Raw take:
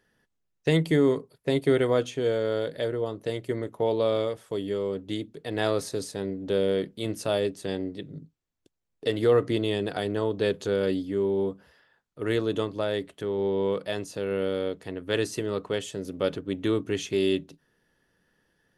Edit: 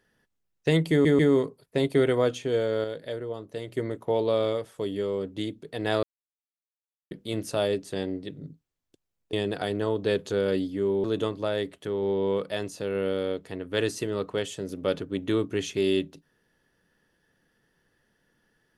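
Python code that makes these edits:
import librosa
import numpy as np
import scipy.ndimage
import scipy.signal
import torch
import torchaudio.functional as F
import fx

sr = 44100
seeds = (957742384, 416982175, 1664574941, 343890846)

y = fx.edit(x, sr, fx.stutter(start_s=0.91, slice_s=0.14, count=3),
    fx.clip_gain(start_s=2.56, length_s=0.84, db=-5.0),
    fx.silence(start_s=5.75, length_s=1.08),
    fx.cut(start_s=9.05, length_s=0.63),
    fx.cut(start_s=11.39, length_s=1.01), tone=tone)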